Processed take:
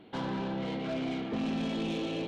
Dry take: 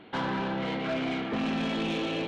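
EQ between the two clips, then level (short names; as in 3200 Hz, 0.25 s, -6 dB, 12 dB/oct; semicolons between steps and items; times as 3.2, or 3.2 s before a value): bell 1600 Hz -8 dB 2 oct; -1.5 dB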